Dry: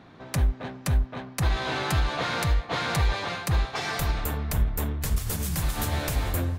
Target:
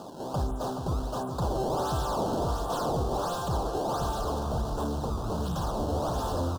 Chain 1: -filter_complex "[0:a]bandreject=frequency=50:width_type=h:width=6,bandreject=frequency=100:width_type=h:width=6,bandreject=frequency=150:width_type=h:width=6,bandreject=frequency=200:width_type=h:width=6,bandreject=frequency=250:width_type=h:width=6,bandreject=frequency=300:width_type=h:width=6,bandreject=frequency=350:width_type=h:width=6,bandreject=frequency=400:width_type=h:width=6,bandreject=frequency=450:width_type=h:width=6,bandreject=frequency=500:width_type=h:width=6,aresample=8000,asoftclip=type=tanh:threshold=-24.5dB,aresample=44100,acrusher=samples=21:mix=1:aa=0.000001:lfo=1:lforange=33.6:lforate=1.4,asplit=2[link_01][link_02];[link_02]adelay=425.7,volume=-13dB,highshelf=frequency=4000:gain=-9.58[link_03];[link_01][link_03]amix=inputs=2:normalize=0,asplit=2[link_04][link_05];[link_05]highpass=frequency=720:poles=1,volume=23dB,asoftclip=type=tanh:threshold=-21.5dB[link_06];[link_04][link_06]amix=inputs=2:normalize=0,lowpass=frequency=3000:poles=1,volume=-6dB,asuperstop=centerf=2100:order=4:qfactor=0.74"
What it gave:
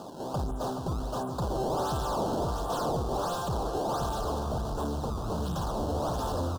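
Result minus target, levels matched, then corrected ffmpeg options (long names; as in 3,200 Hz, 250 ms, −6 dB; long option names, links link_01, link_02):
soft clipping: distortion +9 dB
-filter_complex "[0:a]bandreject=frequency=50:width_type=h:width=6,bandreject=frequency=100:width_type=h:width=6,bandreject=frequency=150:width_type=h:width=6,bandreject=frequency=200:width_type=h:width=6,bandreject=frequency=250:width_type=h:width=6,bandreject=frequency=300:width_type=h:width=6,bandreject=frequency=350:width_type=h:width=6,bandreject=frequency=400:width_type=h:width=6,bandreject=frequency=450:width_type=h:width=6,bandreject=frequency=500:width_type=h:width=6,aresample=8000,asoftclip=type=tanh:threshold=-17.5dB,aresample=44100,acrusher=samples=21:mix=1:aa=0.000001:lfo=1:lforange=33.6:lforate=1.4,asplit=2[link_01][link_02];[link_02]adelay=425.7,volume=-13dB,highshelf=frequency=4000:gain=-9.58[link_03];[link_01][link_03]amix=inputs=2:normalize=0,asplit=2[link_04][link_05];[link_05]highpass=frequency=720:poles=1,volume=23dB,asoftclip=type=tanh:threshold=-21.5dB[link_06];[link_04][link_06]amix=inputs=2:normalize=0,lowpass=frequency=3000:poles=1,volume=-6dB,asuperstop=centerf=2100:order=4:qfactor=0.74"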